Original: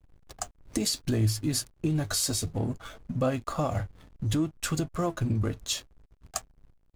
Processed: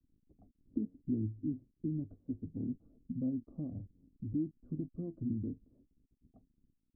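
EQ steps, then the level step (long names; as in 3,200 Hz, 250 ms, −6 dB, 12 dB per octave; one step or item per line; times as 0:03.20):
transistor ladder low-pass 300 Hz, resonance 55%
high-frequency loss of the air 470 metres
low-shelf EQ 190 Hz −10.5 dB
+3.0 dB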